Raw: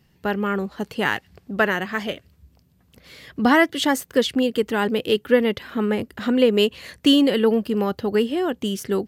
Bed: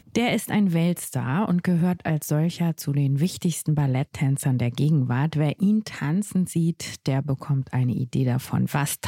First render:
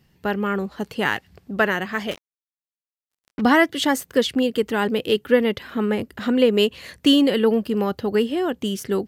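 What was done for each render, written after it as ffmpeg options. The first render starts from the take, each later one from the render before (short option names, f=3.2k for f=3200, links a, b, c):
-filter_complex "[0:a]asettb=1/sr,asplit=3[a][b][c];[a]atrim=end=2.114[d];[b]atrim=start=2.11:end=3.41,asetpts=PTS-STARTPTS,afade=t=in:d=0.004:c=qsin,afade=t=out:st=1.296:d=0.004:c=qsin,acrusher=bits=4:mix=0:aa=0.5[e];[c]atrim=start=3.406[f];[d][e]acrossfade=d=0.004:c1=hsin:c2=qsin[g];[g][f]acrossfade=d=0.004:c1=qsin:c2=hsin"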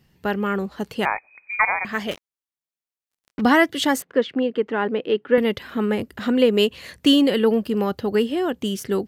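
-filter_complex "[0:a]asettb=1/sr,asplit=3[a][b][c];[a]atrim=end=1.054[d];[b]atrim=start=1.05:end=1.85,asetpts=PTS-STARTPTS,afade=t=in:d=0.004:c=qsin,afade=t=out:st=0.796:d=0.004:c=qsin,lowpass=f=2.2k:t=q:w=0.5098,lowpass=f=2.2k:t=q:w=0.6013,lowpass=f=2.2k:t=q:w=0.9,lowpass=f=2.2k:t=q:w=2.563,afreqshift=-2600[e];[c]atrim=start=1.846[f];[d][e]acrossfade=d=0.004:c1=hsin:c2=qsin[g];[g][f]acrossfade=d=0.004:c1=qsin:c2=hsin,asettb=1/sr,asplit=3[h][i][j];[h]atrim=end=4.024[k];[i]atrim=start=4.02:end=5.38,asetpts=PTS-STARTPTS,afade=t=in:d=0.004:c=qsin,afade=t=out:st=1.356:d=0.004:c=qsin,highpass=230,lowpass=2.1k[l];[j]atrim=start=5.376[m];[k][l]acrossfade=d=0.004:c1=hsin:c2=qsin[n];[n][m]acrossfade=d=0.004:c1=qsin:c2=hsin"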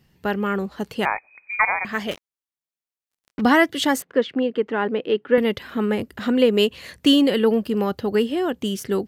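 -af anull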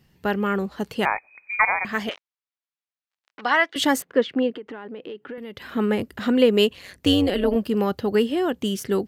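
-filter_complex "[0:a]asettb=1/sr,asplit=3[a][b][c];[a]atrim=end=2.094[d];[b]atrim=start=2.09:end=3.76,asetpts=PTS-STARTPTS,afade=t=in:d=0.004:c=qsin,afade=t=out:st=1.666:d=0.004:c=qsin,highpass=780,lowpass=4.1k[e];[c]atrim=start=3.756[f];[d][e]acrossfade=d=0.004:c1=hsin:c2=qsin[g];[g][f]acrossfade=d=0.004:c1=qsin:c2=hsin,asettb=1/sr,asplit=3[h][i][j];[h]atrim=end=4.564[k];[i]atrim=start=4.56:end=5.7,asetpts=PTS-STARTPTS,afade=t=in:d=0.004:c=qsin,afade=t=out:st=1.136:d=0.004:c=qsin,acompressor=threshold=-32dB:ratio=10:attack=3.2:release=140:knee=1:detection=peak[l];[j]atrim=start=5.696[m];[k][l]acrossfade=d=0.004:c1=hsin:c2=qsin[n];[n][m]acrossfade=d=0.004:c1=qsin:c2=hsin,asettb=1/sr,asplit=3[o][p][q];[o]atrim=end=6.734[r];[p]atrim=start=6.73:end=7.56,asetpts=PTS-STARTPTS,afade=t=in:d=0.004:c=qsin,afade=t=out:st=0.826:d=0.004:c=qsin,tremolo=f=190:d=0.75[s];[q]atrim=start=7.556[t];[r][s]acrossfade=d=0.004:c1=hsin:c2=qsin[u];[u][t]acrossfade=d=0.004:c1=qsin:c2=hsin"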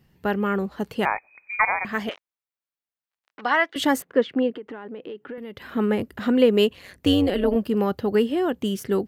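-af "equalizer=f=5.7k:t=o:w=2.4:g=-5"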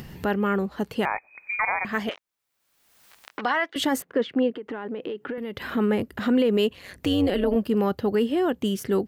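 -af "acompressor=mode=upward:threshold=-25dB:ratio=2.5,alimiter=limit=-13.5dB:level=0:latency=1:release=23"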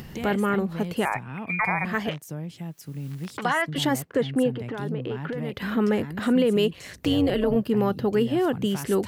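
-filter_complex "[1:a]volume=-12dB[a];[0:a][a]amix=inputs=2:normalize=0"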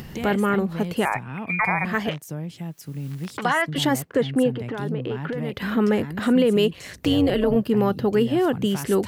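-af "volume=2.5dB"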